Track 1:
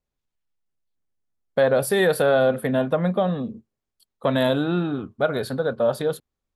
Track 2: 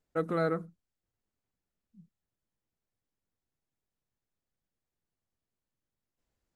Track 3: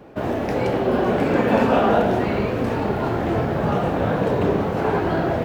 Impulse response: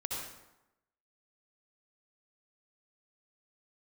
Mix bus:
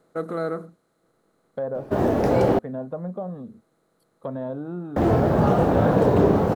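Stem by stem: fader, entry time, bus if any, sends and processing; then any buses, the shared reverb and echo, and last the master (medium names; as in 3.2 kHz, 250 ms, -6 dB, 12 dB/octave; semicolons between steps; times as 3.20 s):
-9.0 dB, 0.00 s, no send, low-pass that closes with the level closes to 1.1 kHz, closed at -18 dBFS
+3.0 dB, 0.00 s, no send, spectral levelling over time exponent 0.6; bass shelf 190 Hz -8.5 dB
+3.0 dB, 1.75 s, muted 2.59–4.96 s, no send, none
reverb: none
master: peaking EQ 2.5 kHz -9 dB 1.5 oct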